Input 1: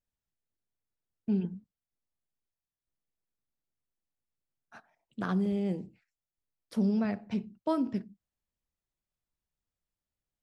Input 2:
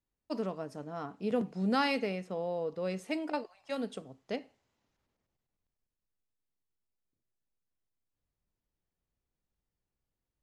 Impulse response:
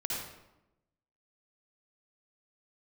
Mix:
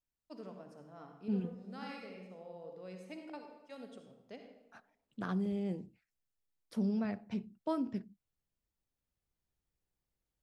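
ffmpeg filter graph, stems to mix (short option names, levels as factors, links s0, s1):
-filter_complex "[0:a]volume=0.531,asplit=2[s0][s1];[1:a]volume=0.447,afade=t=in:st=4.99:d=0.22:silence=0.298538,asplit=2[s2][s3];[s3]volume=0.631[s4];[s1]apad=whole_len=459889[s5];[s2][s5]sidechaincompress=threshold=0.00316:ratio=8:attack=16:release=1160[s6];[2:a]atrim=start_sample=2205[s7];[s4][s7]afir=irnorm=-1:irlink=0[s8];[s0][s6][s8]amix=inputs=3:normalize=0"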